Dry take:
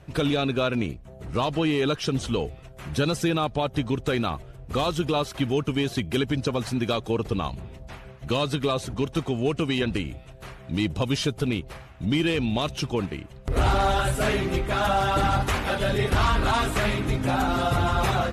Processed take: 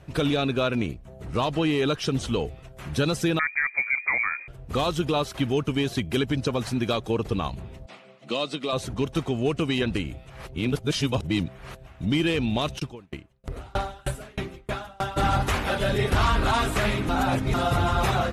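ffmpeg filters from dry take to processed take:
-filter_complex "[0:a]asettb=1/sr,asplit=3[a][b][c];[a]atrim=end=3.394[d];[b]atrim=start=3.39:end=4.48,asetpts=PTS-STARTPTS,afade=t=in:d=0.004:c=qsin,afade=t=out:st=1.086:d=0.004:c=qsin,lowpass=f=2.1k:t=q:w=0.5098,lowpass=f=2.1k:t=q:w=0.6013,lowpass=f=2.1k:t=q:w=0.9,lowpass=f=2.1k:t=q:w=2.563,afreqshift=-2500[e];[c]atrim=start=4.476[f];[d][e]acrossfade=d=0.004:c1=hsin:c2=qsin[g];[g][f]acrossfade=d=0.004:c1=qsin:c2=hsin,asettb=1/sr,asplit=3[h][i][j];[h]atrim=end=7.864[k];[i]atrim=start=7.86:end=8.73,asetpts=PTS-STARTPTS,afade=t=in:d=0.004:c=qsin,afade=t=out:st=0.866:d=0.004:c=qsin,highpass=f=210:w=0.5412,highpass=f=210:w=1.3066,equalizer=f=270:t=q:w=4:g=-4,equalizer=f=410:t=q:w=4:g=-6,equalizer=f=920:t=q:w=4:g=-7,equalizer=f=1.6k:t=q:w=4:g=-10,equalizer=f=6.3k:t=q:w=4:g=-6,lowpass=f=8.2k:w=0.5412,lowpass=f=8.2k:w=1.3066[l];[j]atrim=start=8.726[m];[k][l]acrossfade=d=0.004:c1=hsin:c2=qsin[n];[n][m]acrossfade=d=0.004:c1=qsin:c2=hsin,asplit=3[o][p][q];[o]afade=t=out:st=12.78:d=0.02[r];[p]aeval=exprs='val(0)*pow(10,-33*if(lt(mod(3.2*n/s,1),2*abs(3.2)/1000),1-mod(3.2*n/s,1)/(2*abs(3.2)/1000),(mod(3.2*n/s,1)-2*abs(3.2)/1000)/(1-2*abs(3.2)/1000))/20)':c=same,afade=t=in:st=12.78:d=0.02,afade=t=out:st=15.16:d=0.02[s];[q]afade=t=in:st=15.16:d=0.02[t];[r][s][t]amix=inputs=3:normalize=0,asplit=5[u][v][w][x][y];[u]atrim=end=10.302[z];[v]atrim=start=10.298:end=11.872,asetpts=PTS-STARTPTS,areverse[aa];[w]atrim=start=11.868:end=17.092[ab];[x]atrim=start=17.088:end=17.542,asetpts=PTS-STARTPTS,areverse[ac];[y]atrim=start=17.538[ad];[z][aa]acrossfade=d=0.004:c1=hsin:c2=hsin[ae];[ae][ab]acrossfade=d=0.004:c1=hsin:c2=hsin[af];[af][ac]acrossfade=d=0.004:c1=hsin:c2=hsin[ag];[ag][ad]acrossfade=d=0.004:c1=hsin:c2=hsin"

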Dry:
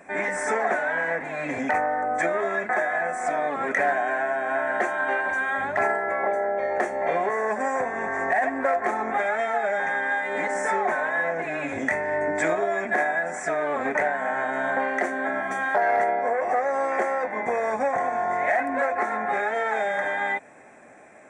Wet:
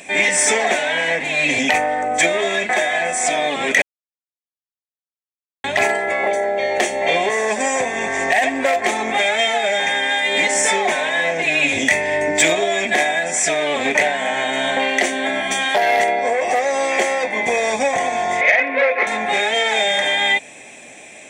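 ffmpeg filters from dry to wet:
-filter_complex "[0:a]asettb=1/sr,asplit=3[a][b][c];[a]atrim=end=18.414[d];[b]atrim=start=18.41:end=19.07,asetpts=PTS-STARTPTS,afade=t=in:d=0.004:c=qsin,afade=t=out:st=0.656:d=0.004:c=qsin,highpass=320,equalizer=f=340:t=q:w=4:g=-6,equalizer=f=500:t=q:w=4:g=9,equalizer=f=750:t=q:w=4:g=-7,equalizer=f=1.3k:t=q:w=4:g=4,equalizer=f=2.2k:t=q:w=4:g=5,equalizer=f=3.1k:t=q:w=4:g=-4,lowpass=f=3.4k:w=0.5412,lowpass=f=3.4k:w=1.3066[e];[c]atrim=start=19.066[f];[d][e]acrossfade=d=0.004:c1=hsin:c2=qsin[g];[g][f]acrossfade=d=0.004:c1=qsin:c2=hsin,asplit=3[h][i][j];[h]atrim=end=3.82,asetpts=PTS-STARTPTS,afade=t=out:st=3.816:d=0.004:c=hsin[k];[i]atrim=start=3.82:end=5.64,asetpts=PTS-STARTPTS,volume=0[l];[j]atrim=start=5.64,asetpts=PTS-STARTPTS,afade=t=in:d=0.004:c=hsin[m];[k][l][m]concat=n=3:v=0:a=1,highshelf=f=2.1k:t=q:w=3:g=13.5,acontrast=80"

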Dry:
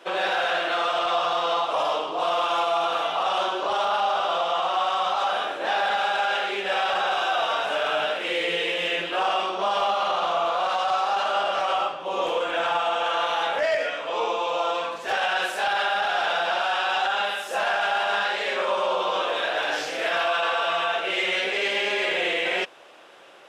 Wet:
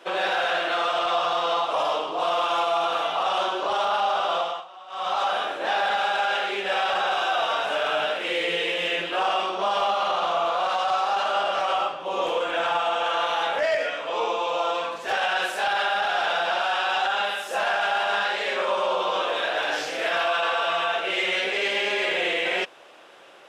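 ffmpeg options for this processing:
-filter_complex "[0:a]asplit=3[a][b][c];[a]atrim=end=4.65,asetpts=PTS-STARTPTS,afade=t=out:st=4.39:d=0.26:silence=0.1[d];[b]atrim=start=4.65:end=4.88,asetpts=PTS-STARTPTS,volume=-20dB[e];[c]atrim=start=4.88,asetpts=PTS-STARTPTS,afade=t=in:d=0.26:silence=0.1[f];[d][e][f]concat=n=3:v=0:a=1"

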